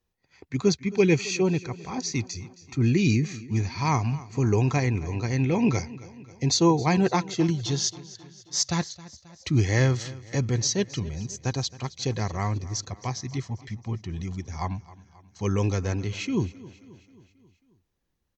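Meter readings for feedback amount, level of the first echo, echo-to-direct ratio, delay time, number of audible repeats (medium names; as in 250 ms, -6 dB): 56%, -19.0 dB, -17.5 dB, 268 ms, 4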